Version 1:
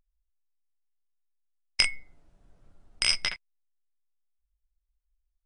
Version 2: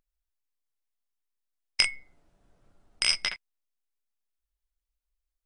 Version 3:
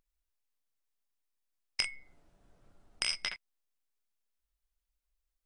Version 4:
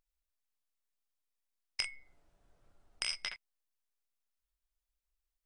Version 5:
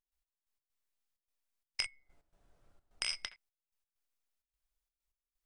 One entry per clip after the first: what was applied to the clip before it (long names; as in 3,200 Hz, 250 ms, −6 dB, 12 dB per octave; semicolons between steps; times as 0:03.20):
low-shelf EQ 150 Hz −7.5 dB
downward compressor 2.5 to 1, threshold −33 dBFS, peak gain reduction 10.5 dB
parametric band 210 Hz −5.5 dB 1.5 octaves; level −3.5 dB
gate pattern ".x..x.xxxx.xxx" 129 BPM −12 dB